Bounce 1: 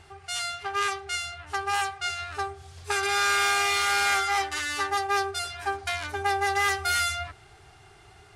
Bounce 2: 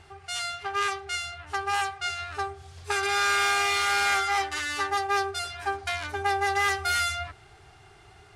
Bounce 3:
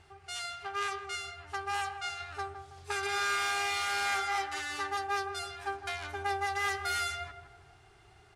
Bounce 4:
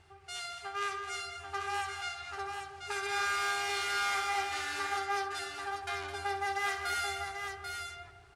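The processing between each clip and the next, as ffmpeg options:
ffmpeg -i in.wav -af "highshelf=frequency=7500:gain=-4.5" out.wav
ffmpeg -i in.wav -filter_complex "[0:a]asplit=2[link_01][link_02];[link_02]adelay=163,lowpass=frequency=1300:poles=1,volume=-8dB,asplit=2[link_03][link_04];[link_04]adelay=163,lowpass=frequency=1300:poles=1,volume=0.51,asplit=2[link_05][link_06];[link_06]adelay=163,lowpass=frequency=1300:poles=1,volume=0.51,asplit=2[link_07][link_08];[link_08]adelay=163,lowpass=frequency=1300:poles=1,volume=0.51,asplit=2[link_09][link_10];[link_10]adelay=163,lowpass=frequency=1300:poles=1,volume=0.51,asplit=2[link_11][link_12];[link_12]adelay=163,lowpass=frequency=1300:poles=1,volume=0.51[link_13];[link_01][link_03][link_05][link_07][link_09][link_11][link_13]amix=inputs=7:normalize=0,volume=-7dB" out.wav
ffmpeg -i in.wav -af "aecho=1:1:62|212|790:0.299|0.316|0.531,volume=-2.5dB" out.wav

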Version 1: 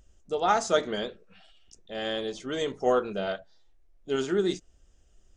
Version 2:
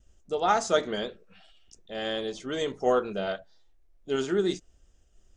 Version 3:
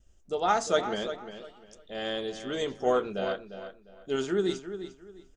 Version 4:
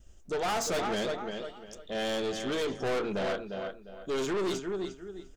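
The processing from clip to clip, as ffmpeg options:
ffmpeg -i in.wav -af "agate=range=-33dB:threshold=-57dB:ratio=3:detection=peak" out.wav
ffmpeg -i in.wav -filter_complex "[0:a]asplit=2[link_01][link_02];[link_02]adelay=351,lowpass=frequency=4200:poles=1,volume=-10.5dB,asplit=2[link_03][link_04];[link_04]adelay=351,lowpass=frequency=4200:poles=1,volume=0.26,asplit=2[link_05][link_06];[link_06]adelay=351,lowpass=frequency=4200:poles=1,volume=0.26[link_07];[link_01][link_03][link_05][link_07]amix=inputs=4:normalize=0,volume=-1.5dB" out.wav
ffmpeg -i in.wav -af "aeval=exprs='(tanh(56.2*val(0)+0.25)-tanh(0.25))/56.2':channel_layout=same,volume=7dB" out.wav

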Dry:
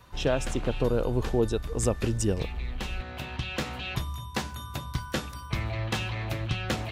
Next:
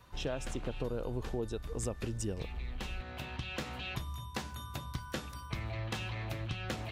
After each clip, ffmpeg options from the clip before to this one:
ffmpeg -i in.wav -af "acompressor=threshold=-30dB:ratio=2.5,volume=-5dB" out.wav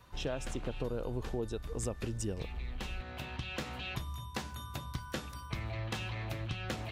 ffmpeg -i in.wav -af anull out.wav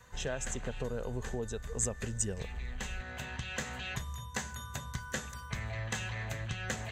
ffmpeg -i in.wav -af "aeval=exprs='val(0)+0.000398*sin(2*PI*490*n/s)':channel_layout=same,superequalizer=6b=0.355:11b=2.24:15b=3.55" out.wav

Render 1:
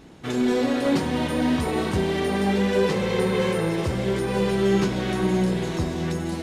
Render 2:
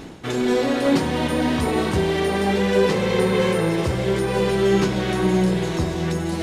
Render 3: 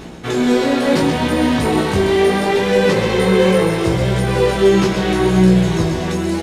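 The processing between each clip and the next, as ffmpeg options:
ffmpeg -i in.wav -af "bandreject=frequency=50:width_type=h:width=6,bandreject=frequency=100:width_type=h:width=6,bandreject=frequency=150:width_type=h:width=6,bandreject=frequency=200:width_type=h:width=6,bandreject=frequency=250:width_type=h:width=6,areverse,acompressor=mode=upward:threshold=-26dB:ratio=2.5,areverse,volume=3.5dB" out.wav
ffmpeg -i in.wav -filter_complex "[0:a]asplit=2[link_01][link_02];[link_02]aecho=0:1:129:0.422[link_03];[link_01][link_03]amix=inputs=2:normalize=0,flanger=delay=16.5:depth=4.7:speed=0.72,volume=7.5dB" out.wav

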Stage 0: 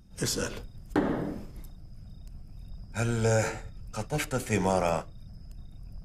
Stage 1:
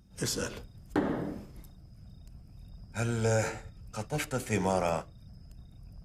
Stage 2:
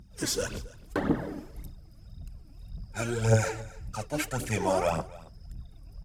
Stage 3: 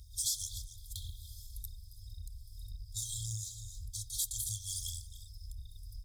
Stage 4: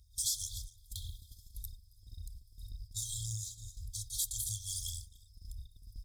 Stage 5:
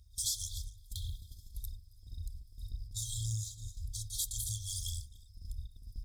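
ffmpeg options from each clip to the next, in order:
ffmpeg -i in.wav -af "highpass=41,volume=-2.5dB" out.wav
ffmpeg -i in.wav -af "aphaser=in_gain=1:out_gain=1:delay=3.7:decay=0.67:speed=1.8:type=triangular,aecho=1:1:274:0.0944" out.wav
ffmpeg -i in.wav -af "afftfilt=real='re*(1-between(b*sr/4096,110,3200))':imag='im*(1-between(b*sr/4096,110,3200))':win_size=4096:overlap=0.75,acompressor=threshold=-42dB:ratio=4,aexciter=amount=2.8:drive=2.8:freq=3000,volume=1dB" out.wav
ffmpeg -i in.wav -af "agate=range=-10dB:threshold=-45dB:ratio=16:detection=peak" out.wav
ffmpeg -i in.wav -af "highshelf=frequency=3100:gain=-7,bandreject=frequency=50:width_type=h:width=6,bandreject=frequency=100:width_type=h:width=6,bandreject=frequency=150:width_type=h:width=6,bandreject=frequency=200:width_type=h:width=6,bandreject=frequency=250:width_type=h:width=6,bandreject=frequency=300:width_type=h:width=6,bandreject=frequency=350:width_type=h:width=6,volume=5dB" out.wav

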